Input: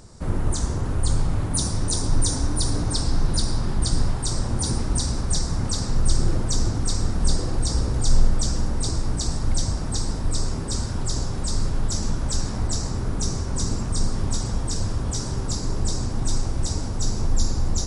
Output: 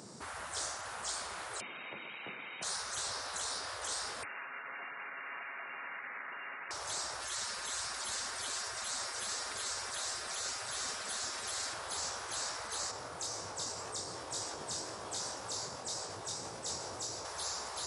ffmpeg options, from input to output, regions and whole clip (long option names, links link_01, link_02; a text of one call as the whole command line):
ffmpeg -i in.wav -filter_complex "[0:a]asettb=1/sr,asplit=3[link_01][link_02][link_03];[link_01]atrim=end=1.604[link_04];[link_02]atrim=start=1.6:end=2.63,asetpts=PTS-STARTPTS,afade=type=in:duration=0.004:curve=qsin,afade=type=out:start_time=1.026:duration=0.004:curve=qsin,equalizer=frequency=1700:width_type=o:width=0.34:gain=-14,acontrast=71,lowpass=frequency=3100:width_type=q:width=0.5098,lowpass=frequency=3100:width_type=q:width=0.6013,lowpass=frequency=3100:width_type=q:width=0.9,lowpass=frequency=3100:width_type=q:width=2.563,afreqshift=-3600[link_05];[link_03]atrim=start=2.626[link_06];[link_04][link_05]acrossfade=duration=0.004:curve1=hsin:curve2=qsin[link_07];[link_07][link_06]acrossfade=duration=0.004:curve1=qsin:curve2=hsin,asettb=1/sr,asplit=3[link_08][link_09][link_10];[link_08]atrim=end=4.234[link_11];[link_09]atrim=start=4.23:end=6.71,asetpts=PTS-STARTPTS,afade=type=in:duration=0.004:curve=qsin,afade=type=out:start_time=2.476:duration=0.004:curve=qsin,highpass=120,aecho=1:1:7.1:0.43,atrim=end_sample=109368,lowpass=frequency=2400:width_type=q:width=0.5098,lowpass=frequency=2400:width_type=q:width=0.6013,lowpass=frequency=2400:width_type=q:width=0.9,lowpass=frequency=2400:width_type=q:width=2.563,afreqshift=-2800[link_12];[link_10]atrim=start=6.706[link_13];[link_11][link_12]acrossfade=duration=0.004:curve1=hsin:curve2=qsin[link_14];[link_14][link_13]acrossfade=duration=0.004:curve1=qsin:curve2=hsin,asettb=1/sr,asplit=3[link_15][link_16][link_17];[link_15]atrim=end=7.214[link_18];[link_16]atrim=start=7.21:end=11.74,asetpts=PTS-STARTPTS,afade=type=in:duration=0.004:curve=qsin,afade=type=out:start_time=4.526:duration=0.004:curve=qsin,aecho=1:1:6.4:0.97,atrim=end_sample=199773,aecho=1:1:728:0.119,atrim=end_sample=199773[link_19];[link_17]atrim=start=11.736[link_20];[link_18][link_19]acrossfade=duration=0.004:curve1=hsin:curve2=qsin[link_21];[link_21][link_20]acrossfade=duration=0.004:curve1=qsin:curve2=hsin,asettb=1/sr,asplit=3[link_22][link_23][link_24];[link_22]atrim=end=12.914[link_25];[link_23]atrim=start=12.91:end=17.25,asetpts=PTS-STARTPTS,afade=type=in:duration=0.004:curve=qsin,afade=type=out:start_time=4.336:duration=0.004:curve=qsin,acompressor=threshold=-23dB:ratio=2:attack=3.2:release=140:knee=1:detection=peak,flanger=delay=18.5:depth=5:speed=1.9[link_26];[link_24]atrim=start=17.246[link_27];[link_25][link_26]acrossfade=duration=0.004:curve1=hsin:curve2=qsin[link_28];[link_28][link_27]acrossfade=duration=0.004:curve1=qsin:curve2=hsin,highpass=frequency=160:width=0.5412,highpass=frequency=160:width=1.3066,afftfilt=real='re*lt(hypot(re,im),0.0398)':imag='im*lt(hypot(re,im),0.0398)':win_size=1024:overlap=0.75" out.wav